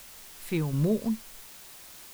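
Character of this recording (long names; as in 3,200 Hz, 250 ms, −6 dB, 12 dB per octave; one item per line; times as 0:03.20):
sample-and-hold tremolo 4.1 Hz, depth 75%
a quantiser's noise floor 8 bits, dither triangular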